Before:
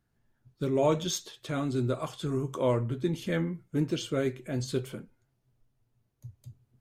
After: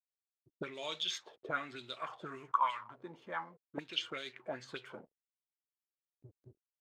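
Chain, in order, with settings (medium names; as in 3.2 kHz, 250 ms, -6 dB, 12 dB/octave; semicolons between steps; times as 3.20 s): 2.51–3.78 s: resonant low shelf 670 Hz -13.5 dB, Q 3; hysteresis with a dead band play -49 dBFS; auto-wah 290–3700 Hz, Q 3.5, up, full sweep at -24.5 dBFS; trim +8 dB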